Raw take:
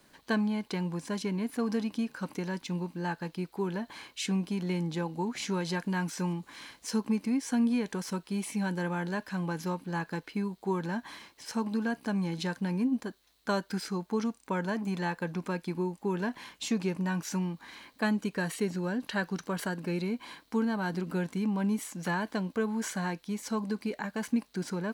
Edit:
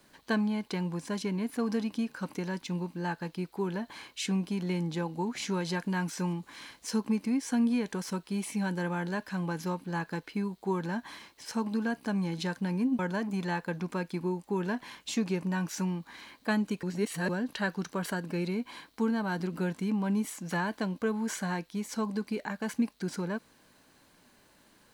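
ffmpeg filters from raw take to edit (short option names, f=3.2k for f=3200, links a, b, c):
-filter_complex "[0:a]asplit=4[a][b][c][d];[a]atrim=end=12.992[e];[b]atrim=start=14.528:end=18.372[f];[c]atrim=start=18.368:end=18.832,asetpts=PTS-STARTPTS,areverse[g];[d]atrim=start=18.828[h];[e][f]acrossfade=d=0.004:c1=hsin:c2=hsin[i];[i][g]acrossfade=d=0.004:c1=hsin:c2=hsin[j];[j][h]acrossfade=d=0.004:c1=hsin:c2=hsin"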